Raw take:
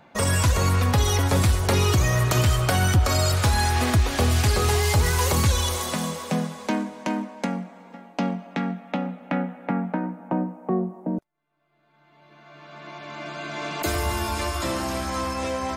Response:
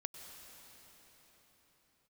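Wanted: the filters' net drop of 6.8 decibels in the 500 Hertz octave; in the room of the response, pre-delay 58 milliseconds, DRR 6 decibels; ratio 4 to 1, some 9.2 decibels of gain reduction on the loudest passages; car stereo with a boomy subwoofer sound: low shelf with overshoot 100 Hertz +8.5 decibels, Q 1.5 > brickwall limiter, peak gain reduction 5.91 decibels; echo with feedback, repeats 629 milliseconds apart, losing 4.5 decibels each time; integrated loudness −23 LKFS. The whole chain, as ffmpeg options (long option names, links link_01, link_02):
-filter_complex "[0:a]equalizer=frequency=500:width_type=o:gain=-8.5,acompressor=threshold=-27dB:ratio=4,aecho=1:1:629|1258|1887|2516|3145|3774|4403|5032|5661:0.596|0.357|0.214|0.129|0.0772|0.0463|0.0278|0.0167|0.01,asplit=2[link_01][link_02];[1:a]atrim=start_sample=2205,adelay=58[link_03];[link_02][link_03]afir=irnorm=-1:irlink=0,volume=-3.5dB[link_04];[link_01][link_04]amix=inputs=2:normalize=0,lowshelf=frequency=100:width_type=q:width=1.5:gain=8.5,volume=2.5dB,alimiter=limit=-11.5dB:level=0:latency=1"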